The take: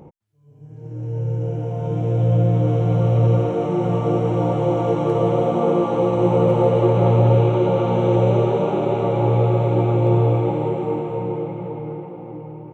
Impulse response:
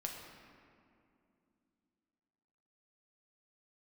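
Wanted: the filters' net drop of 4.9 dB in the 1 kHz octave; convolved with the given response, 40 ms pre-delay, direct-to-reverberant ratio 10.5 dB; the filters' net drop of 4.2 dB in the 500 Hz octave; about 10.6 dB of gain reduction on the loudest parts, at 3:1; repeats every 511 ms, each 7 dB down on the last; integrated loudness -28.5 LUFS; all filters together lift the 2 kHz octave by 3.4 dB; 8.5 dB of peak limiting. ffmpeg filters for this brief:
-filter_complex "[0:a]equalizer=f=500:t=o:g=-4,equalizer=f=1000:t=o:g=-6,equalizer=f=2000:t=o:g=6,acompressor=threshold=0.0398:ratio=3,alimiter=level_in=1.26:limit=0.0631:level=0:latency=1,volume=0.794,aecho=1:1:511|1022|1533|2044|2555:0.447|0.201|0.0905|0.0407|0.0183,asplit=2[s0][s1];[1:a]atrim=start_sample=2205,adelay=40[s2];[s1][s2]afir=irnorm=-1:irlink=0,volume=0.316[s3];[s0][s3]amix=inputs=2:normalize=0,volume=1.78"

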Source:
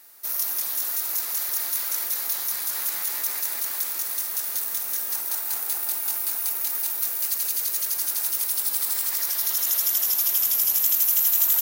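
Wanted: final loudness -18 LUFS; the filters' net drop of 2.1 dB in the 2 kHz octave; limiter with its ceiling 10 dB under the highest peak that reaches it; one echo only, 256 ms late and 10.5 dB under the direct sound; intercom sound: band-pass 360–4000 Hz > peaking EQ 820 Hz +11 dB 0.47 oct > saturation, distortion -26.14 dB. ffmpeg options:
-af "equalizer=f=2000:t=o:g=-3,alimiter=limit=0.15:level=0:latency=1,highpass=360,lowpass=4000,equalizer=f=820:t=o:w=0.47:g=11,aecho=1:1:256:0.299,asoftclip=threshold=0.0398,volume=12.6"

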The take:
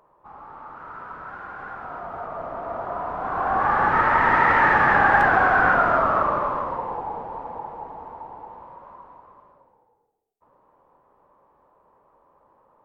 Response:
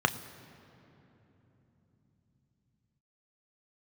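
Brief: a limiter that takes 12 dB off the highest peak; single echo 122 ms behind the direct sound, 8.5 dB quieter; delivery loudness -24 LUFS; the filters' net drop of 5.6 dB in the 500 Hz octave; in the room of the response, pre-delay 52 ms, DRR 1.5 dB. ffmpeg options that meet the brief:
-filter_complex "[0:a]equalizer=f=500:t=o:g=-8,alimiter=limit=0.112:level=0:latency=1,aecho=1:1:122:0.376,asplit=2[s0][s1];[1:a]atrim=start_sample=2205,adelay=52[s2];[s1][s2]afir=irnorm=-1:irlink=0,volume=0.211[s3];[s0][s3]amix=inputs=2:normalize=0,volume=1.26"

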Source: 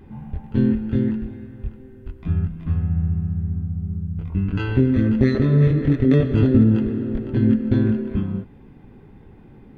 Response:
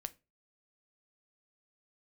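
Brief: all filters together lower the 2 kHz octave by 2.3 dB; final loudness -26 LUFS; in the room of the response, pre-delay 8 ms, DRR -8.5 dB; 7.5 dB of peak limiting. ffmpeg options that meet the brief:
-filter_complex "[0:a]equalizer=f=2000:t=o:g=-3,alimiter=limit=0.224:level=0:latency=1,asplit=2[s0][s1];[1:a]atrim=start_sample=2205,adelay=8[s2];[s1][s2]afir=irnorm=-1:irlink=0,volume=3.76[s3];[s0][s3]amix=inputs=2:normalize=0,volume=0.237"

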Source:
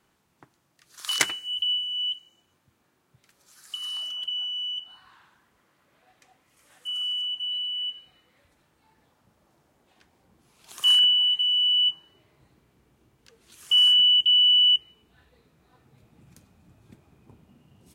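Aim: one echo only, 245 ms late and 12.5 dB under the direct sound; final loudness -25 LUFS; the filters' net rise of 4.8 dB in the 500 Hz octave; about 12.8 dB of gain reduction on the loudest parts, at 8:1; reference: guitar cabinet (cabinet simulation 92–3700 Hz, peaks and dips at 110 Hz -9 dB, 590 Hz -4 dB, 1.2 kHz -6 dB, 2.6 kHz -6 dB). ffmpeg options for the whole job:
-af "equalizer=f=500:t=o:g=8,acompressor=threshold=0.0355:ratio=8,highpass=92,equalizer=f=110:t=q:w=4:g=-9,equalizer=f=590:t=q:w=4:g=-4,equalizer=f=1200:t=q:w=4:g=-6,equalizer=f=2600:t=q:w=4:g=-6,lowpass=f=3700:w=0.5412,lowpass=f=3700:w=1.3066,aecho=1:1:245:0.237,volume=2.66"

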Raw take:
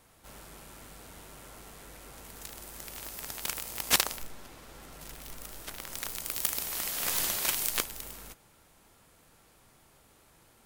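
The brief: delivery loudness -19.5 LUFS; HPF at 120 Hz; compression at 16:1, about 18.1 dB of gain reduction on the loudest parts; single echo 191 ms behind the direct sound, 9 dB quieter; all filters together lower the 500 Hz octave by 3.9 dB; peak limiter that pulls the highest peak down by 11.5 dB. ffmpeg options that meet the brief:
-af "highpass=120,equalizer=f=500:t=o:g=-5,acompressor=threshold=0.0141:ratio=16,alimiter=level_in=1.68:limit=0.0631:level=0:latency=1,volume=0.596,aecho=1:1:191:0.355,volume=16.8"

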